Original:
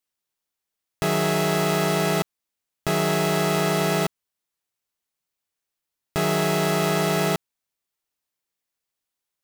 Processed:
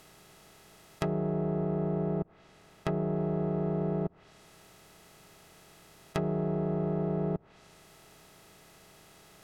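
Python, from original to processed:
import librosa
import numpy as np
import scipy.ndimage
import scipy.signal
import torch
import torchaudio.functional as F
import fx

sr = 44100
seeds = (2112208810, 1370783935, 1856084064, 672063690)

y = fx.bin_compress(x, sr, power=0.4)
y = fx.env_lowpass_down(y, sr, base_hz=510.0, full_db=-19.0)
y = fx.high_shelf(y, sr, hz=4900.0, db=-8.5, at=(1.08, 3.16))
y = y * 10.0 ** (-6.5 / 20.0)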